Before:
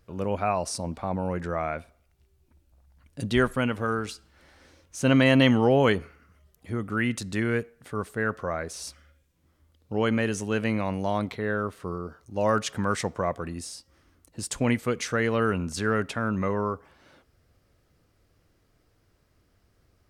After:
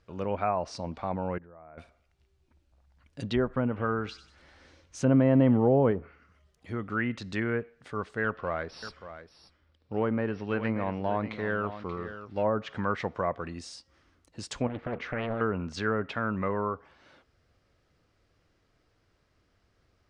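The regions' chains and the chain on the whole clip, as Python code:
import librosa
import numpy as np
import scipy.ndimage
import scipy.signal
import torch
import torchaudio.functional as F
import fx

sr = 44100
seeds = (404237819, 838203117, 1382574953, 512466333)

y = fx.chain(x, sr, fx.lowpass(hz=1000.0, slope=12),
    fx.level_steps(step_db=24), at=(1.38, 1.78))
y = fx.chain(y, sr, fx.low_shelf(hz=260.0, db=4.5),
    fx.echo_wet_highpass(ms=95, feedback_pct=38, hz=1600.0, wet_db=-15.0), at=(3.55, 5.91))
y = fx.chain(y, sr, fx.brickwall_lowpass(high_hz=5800.0),
    fx.echo_single(ms=583, db=-12.5),
    fx.running_max(window=3), at=(8.24, 12.43))
y = fx.chain(y, sr, fx.lowpass(hz=1500.0, slope=12),
    fx.over_compress(threshold_db=-29.0, ratio=-1.0),
    fx.doppler_dist(depth_ms=0.98), at=(14.67, 15.41))
y = fx.env_lowpass_down(y, sr, base_hz=770.0, full_db=-19.0)
y = scipy.signal.sosfilt(scipy.signal.butter(2, 5600.0, 'lowpass', fs=sr, output='sos'), y)
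y = fx.low_shelf(y, sr, hz=490.0, db=-5.0)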